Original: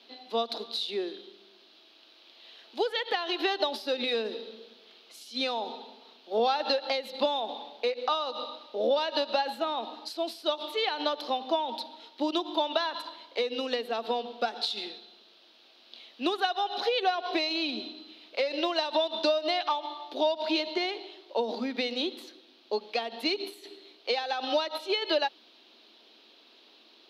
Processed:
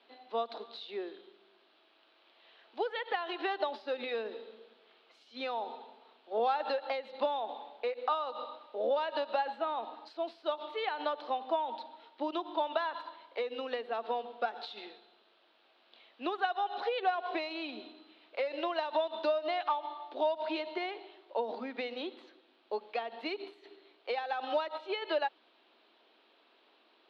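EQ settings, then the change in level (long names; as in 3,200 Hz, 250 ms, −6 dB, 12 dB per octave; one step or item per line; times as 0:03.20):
high-pass filter 730 Hz 6 dB per octave
low-pass filter 1,800 Hz 12 dB per octave
0.0 dB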